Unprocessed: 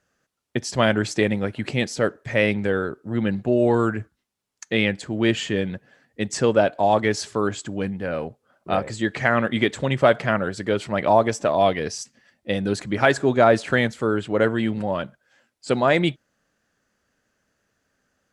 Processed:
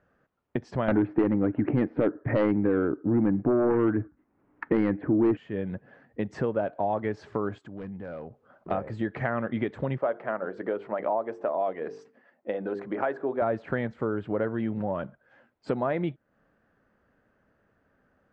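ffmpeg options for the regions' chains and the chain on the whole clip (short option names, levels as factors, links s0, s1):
-filter_complex "[0:a]asettb=1/sr,asplit=3[s0][s1][s2];[s0]atrim=end=0.884[s3];[s1]atrim=start=0.88:end=5.37,asetpts=PTS-STARTPTS,afade=t=in:d=0.004:c=qsin,afade=t=out:st=4.486:d=0.004:c=qsin,lowpass=f=2200:w=0.5412,lowpass=f=2200:w=1.3066,aeval=exprs='0.562*sin(PI/2*2.82*val(0)/0.562)':c=same,equalizer=f=300:w=3.9:g=14.5[s4];[s2]atrim=start=5.366[s5];[s3][s4]acrossfade=d=0.004:c1=hsin:c2=qsin[s6];[s6][s5]acrossfade=d=0.004:c1=qsin:c2=hsin,asettb=1/sr,asplit=3[s7][s8][s9];[s7]atrim=end=7.584[s10];[s8]atrim=start=7.58:end=8.71,asetpts=PTS-STARTPTS,afade=t=in:d=0.004:c=qsin,afade=t=out:st=1.126:d=0.004:c=qsin,aeval=exprs='0.119*(abs(mod(val(0)/0.119+3,4)-2)-1)':c=same,acompressor=threshold=0.00501:ratio=3:attack=3.2:release=140:knee=1:detection=peak,highshelf=f=3700:g=7.5[s11];[s9]atrim=start=8.706[s12];[s10][s11]acrossfade=d=0.004:c1=hsin:c2=qsin[s13];[s13][s12]acrossfade=d=0.004:c1=qsin:c2=hsin,asettb=1/sr,asplit=3[s14][s15][s16];[s14]atrim=end=9.984[s17];[s15]atrim=start=9.98:end=13.42,asetpts=PTS-STARTPTS,afade=t=in:d=0.004:c=qsin,afade=t=out:st=3.436:d=0.004:c=qsin,highpass=360,highshelf=f=2300:g=-10.5,bandreject=f=50:t=h:w=6,bandreject=f=100:t=h:w=6,bandreject=f=150:t=h:w=6,bandreject=f=200:t=h:w=6,bandreject=f=250:t=h:w=6,bandreject=f=300:t=h:w=6,bandreject=f=350:t=h:w=6,bandreject=f=400:t=h:w=6,bandreject=f=450:t=h:w=6,bandreject=f=500:t=h:w=6[s18];[s16]atrim=start=13.416[s19];[s17][s18]acrossfade=d=0.004:c1=hsin:c2=qsin[s20];[s20][s19]acrossfade=d=0.004:c1=qsin:c2=hsin,lowpass=1400,acompressor=threshold=0.0178:ratio=3,volume=1.88"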